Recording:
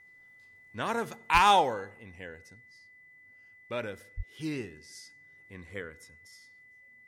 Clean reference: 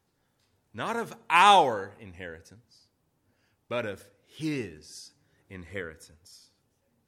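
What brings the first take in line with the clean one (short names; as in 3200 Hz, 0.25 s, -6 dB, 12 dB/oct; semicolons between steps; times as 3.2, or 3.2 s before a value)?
clip repair -13 dBFS; notch 2000 Hz, Q 30; de-plosive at 1.33/4.16; gain 0 dB, from 1.38 s +3.5 dB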